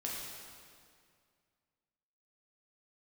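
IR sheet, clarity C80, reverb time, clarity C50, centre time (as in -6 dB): 1.0 dB, 2.1 s, -0.5 dB, 114 ms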